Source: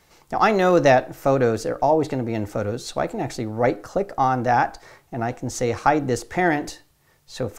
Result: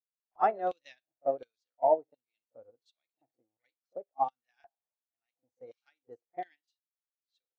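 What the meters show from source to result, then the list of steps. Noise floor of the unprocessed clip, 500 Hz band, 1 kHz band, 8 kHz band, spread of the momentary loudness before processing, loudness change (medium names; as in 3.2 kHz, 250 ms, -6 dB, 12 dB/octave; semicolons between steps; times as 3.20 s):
-60 dBFS, -13.5 dB, -12.5 dB, under -40 dB, 11 LU, -10.0 dB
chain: LFO band-pass square 1.4 Hz 710–3400 Hz; spectral noise reduction 11 dB; pre-echo 41 ms -13.5 dB; upward expansion 2.5:1, over -44 dBFS; trim -1.5 dB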